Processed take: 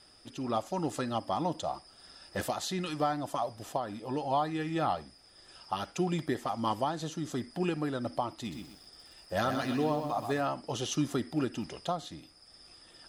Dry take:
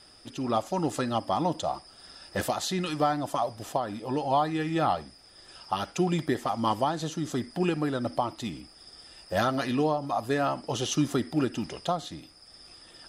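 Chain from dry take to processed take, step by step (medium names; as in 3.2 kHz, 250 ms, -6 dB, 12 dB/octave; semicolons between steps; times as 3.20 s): 8.32–10.41 s: bit-crushed delay 126 ms, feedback 35%, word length 8-bit, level -6.5 dB; trim -4.5 dB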